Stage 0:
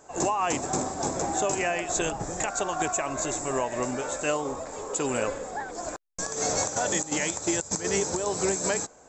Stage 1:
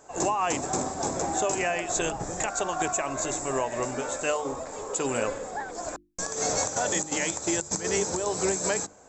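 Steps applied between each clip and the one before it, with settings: hum notches 50/100/150/200/250/300/350 Hz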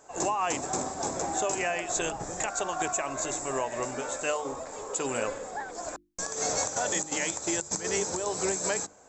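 bass shelf 360 Hz -4 dB; trim -1.5 dB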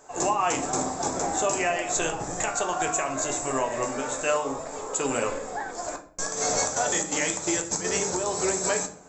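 simulated room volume 53 m³, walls mixed, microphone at 0.37 m; trim +2.5 dB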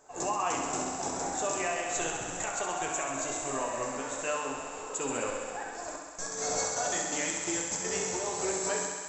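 thinning echo 66 ms, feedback 83%, high-pass 280 Hz, level -6 dB; trim -7.5 dB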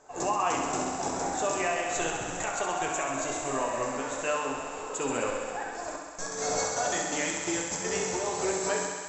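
distance through air 51 m; trim +3.5 dB

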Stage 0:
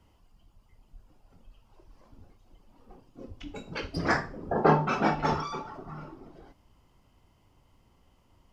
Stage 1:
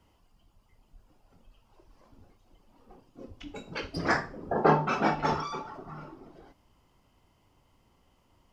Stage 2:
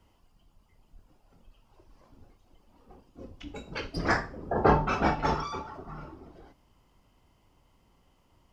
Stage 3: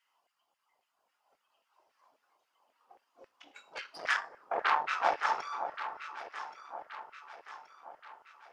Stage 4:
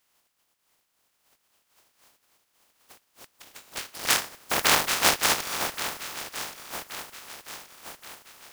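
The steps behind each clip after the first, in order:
bass shelf 160 Hz -5 dB
octave divider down 2 oct, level -2 dB
Chebyshev shaper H 6 -12 dB, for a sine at -8 dBFS; LFO high-pass saw down 3.7 Hz 580–2000 Hz; echo whose repeats swap between lows and highs 563 ms, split 1.2 kHz, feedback 69%, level -8 dB; trim -8 dB
spectral contrast reduction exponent 0.2; trim +7.5 dB

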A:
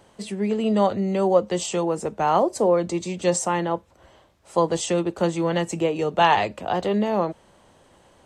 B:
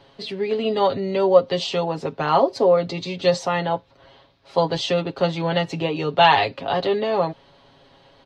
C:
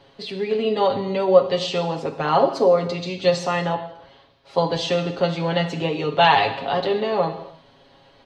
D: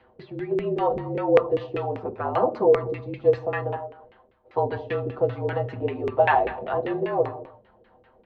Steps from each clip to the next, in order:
resonant high shelf 5.9 kHz -12.5 dB, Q 3; comb 7.3 ms, depth 76%
gated-style reverb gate 320 ms falling, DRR 6 dB; trim -1 dB
LFO low-pass saw down 5.1 Hz 410–2300 Hz; frequency shift -48 Hz; trim -7 dB

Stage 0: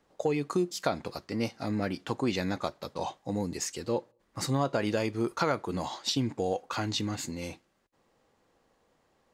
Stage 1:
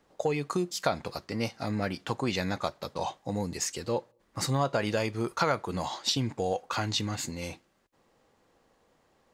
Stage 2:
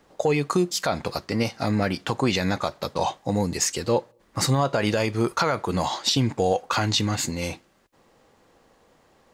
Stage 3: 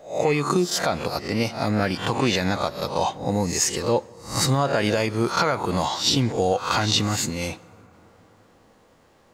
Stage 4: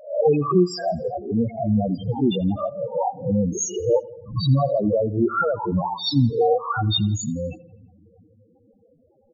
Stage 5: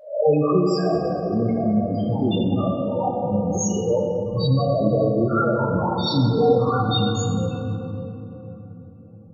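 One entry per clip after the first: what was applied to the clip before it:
dynamic bell 300 Hz, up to -6 dB, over -43 dBFS, Q 1.3; trim +2.5 dB
peak limiter -18.5 dBFS, peak gain reduction 8 dB; trim +8 dB
reverse spectral sustain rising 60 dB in 0.40 s; on a send at -22.5 dB: reverberation RT60 4.7 s, pre-delay 56 ms
loudest bins only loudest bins 4; feedback delay 84 ms, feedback 55%, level -23 dB; trim +5.5 dB
simulated room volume 210 m³, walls hard, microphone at 0.5 m; trim -2.5 dB

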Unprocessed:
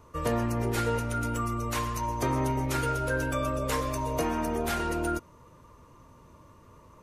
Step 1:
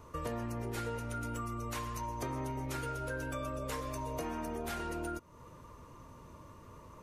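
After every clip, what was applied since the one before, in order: compression 3:1, threshold -40 dBFS, peak gain reduction 12 dB; trim +1 dB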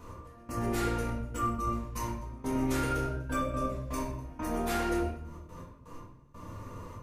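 trance gate "x...xxxxx..x.x.." 123 bpm -24 dB; simulated room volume 220 m³, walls mixed, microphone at 1.9 m; trim +1.5 dB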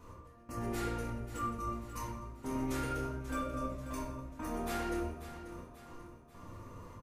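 feedback delay 538 ms, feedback 49%, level -12 dB; trim -6 dB

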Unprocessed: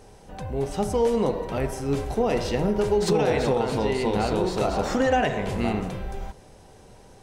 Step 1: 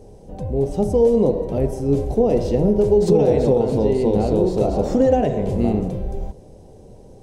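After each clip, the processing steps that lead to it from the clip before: FFT filter 540 Hz 0 dB, 1.4 kHz -20 dB, 6.4 kHz -11 dB; trim +7 dB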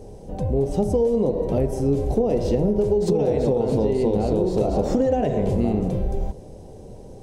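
compression, threshold -20 dBFS, peak gain reduction 9.5 dB; trim +3 dB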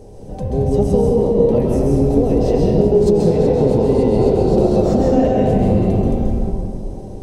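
reverberation RT60 2.4 s, pre-delay 130 ms, DRR -3 dB; trim +1 dB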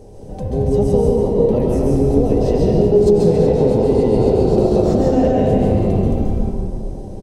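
delay 144 ms -6.5 dB; trim -1 dB

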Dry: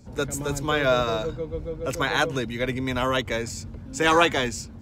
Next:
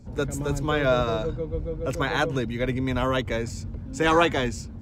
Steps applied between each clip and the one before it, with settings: tilt EQ -1.5 dB/octave; trim -1.5 dB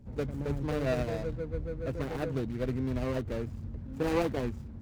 median filter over 41 samples; trim -5 dB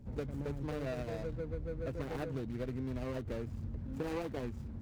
compression, threshold -35 dBFS, peak gain reduction 11 dB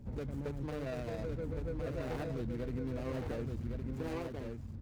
fade out at the end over 1.07 s; peak limiter -33.5 dBFS, peak gain reduction 7.5 dB; delay 1112 ms -5 dB; trim +2 dB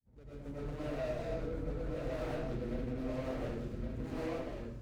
fade-in on the opening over 0.62 s; algorithmic reverb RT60 0.69 s, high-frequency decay 0.85×, pre-delay 70 ms, DRR -9 dB; loudspeaker Doppler distortion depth 0.21 ms; trim -8.5 dB

